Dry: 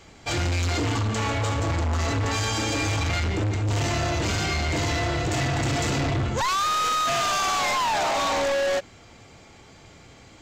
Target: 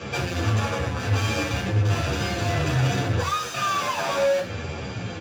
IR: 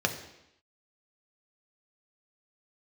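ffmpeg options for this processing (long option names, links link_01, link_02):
-filter_complex "[0:a]lowpass=5300,asplit=2[link_01][link_02];[link_02]acompressor=threshold=-36dB:ratio=12,volume=0dB[link_03];[link_01][link_03]amix=inputs=2:normalize=0,atempo=2,asoftclip=type=tanh:threshold=-37dB[link_04];[1:a]atrim=start_sample=2205,afade=type=out:start_time=0.2:duration=0.01,atrim=end_sample=9261[link_05];[link_04][link_05]afir=irnorm=-1:irlink=0,asplit=2[link_06][link_07];[link_07]adelay=10.1,afreqshift=-1.5[link_08];[link_06][link_08]amix=inputs=2:normalize=1,volume=6dB"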